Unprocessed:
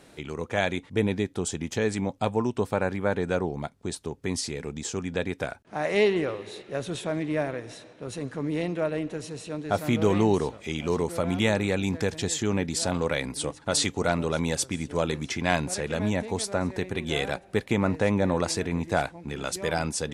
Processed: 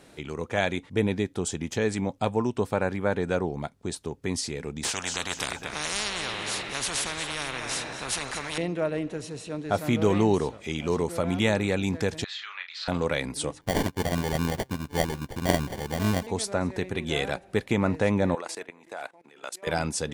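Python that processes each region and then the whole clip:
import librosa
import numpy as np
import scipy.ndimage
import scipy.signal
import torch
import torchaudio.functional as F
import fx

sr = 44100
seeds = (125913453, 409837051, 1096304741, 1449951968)

y = fx.chain(x, sr, fx.echo_feedback(ms=231, feedback_pct=32, wet_db=-15),
    fx.spectral_comp(ratio=10.0), at=(4.83, 8.58))
y = fx.chain(y, sr, fx.cheby1_bandpass(low_hz=1200.0, high_hz=4200.0, order=3),
    fx.doubler(ms=34.0, db=-6.5), at=(12.24, 12.88))
y = fx.chain(y, sr, fx.low_shelf(hz=130.0, db=8.0),
    fx.sample_hold(seeds[0], rate_hz=1300.0, jitter_pct=0),
    fx.upward_expand(threshold_db=-45.0, expansion=1.5), at=(13.61, 16.27))
y = fx.chain(y, sr, fx.highpass(hz=510.0, slope=12),
    fx.peak_eq(hz=5300.0, db=-4.5, octaves=1.1),
    fx.level_steps(step_db=18), at=(18.35, 19.67))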